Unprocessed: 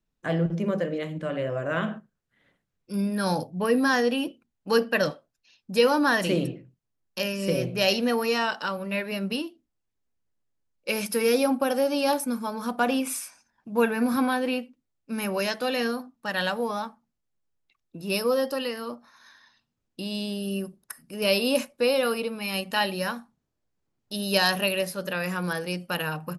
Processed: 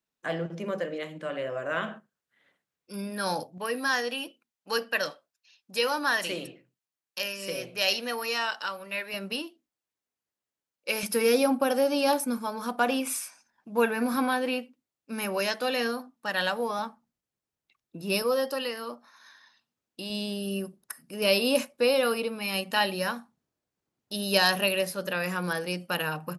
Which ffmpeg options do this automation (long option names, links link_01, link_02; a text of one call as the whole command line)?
ffmpeg -i in.wav -af "asetnsamples=nb_out_samples=441:pad=0,asendcmd='3.58 highpass f 1200;9.14 highpass f 540;11.03 highpass f 140;12.38 highpass f 300;16.79 highpass f 99;18.22 highpass f 410;20.1 highpass f 170',highpass=frequency=570:poles=1" out.wav